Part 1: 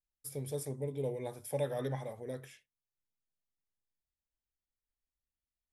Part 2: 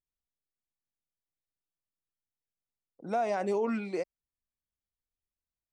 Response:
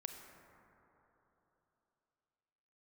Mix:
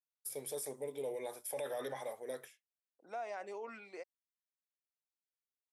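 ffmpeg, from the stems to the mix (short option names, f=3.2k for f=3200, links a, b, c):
-filter_complex "[0:a]agate=range=-33dB:threshold=-44dB:ratio=3:detection=peak,highshelf=f=8.5k:g=6.5,volume=2.5dB[a];[1:a]equalizer=f=1.9k:w=1.5:g=4,volume=-11.5dB[b];[a][b]amix=inputs=2:normalize=0,highpass=480,alimiter=level_in=8dB:limit=-24dB:level=0:latency=1:release=14,volume=-8dB"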